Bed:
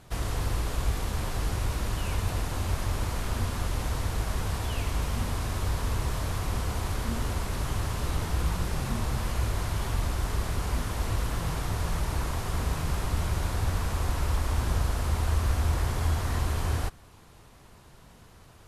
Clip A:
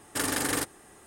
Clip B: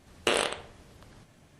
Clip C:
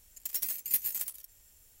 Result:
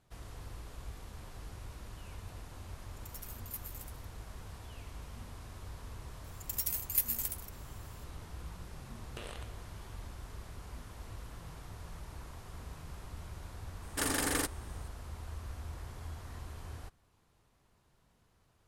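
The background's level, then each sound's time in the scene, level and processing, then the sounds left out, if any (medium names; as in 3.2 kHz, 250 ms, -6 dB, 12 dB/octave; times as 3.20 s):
bed -17.5 dB
2.80 s: add C -14.5 dB + resampled via 32 kHz
6.24 s: add C -1.5 dB
8.90 s: add B -5.5 dB + compression 2:1, threshold -50 dBFS
13.82 s: add A -4 dB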